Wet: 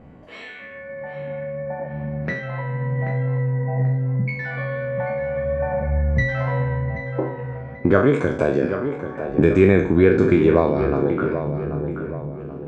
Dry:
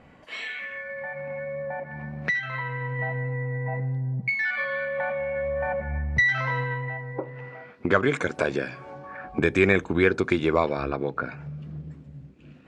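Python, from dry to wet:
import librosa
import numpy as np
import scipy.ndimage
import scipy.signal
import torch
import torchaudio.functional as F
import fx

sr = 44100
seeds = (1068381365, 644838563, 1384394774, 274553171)

y = fx.spec_trails(x, sr, decay_s=0.52)
y = fx.tilt_shelf(y, sr, db=8.5, hz=910.0)
y = fx.echo_tape(y, sr, ms=782, feedback_pct=49, wet_db=-7.0, lp_hz=1800.0, drive_db=4.0, wow_cents=38)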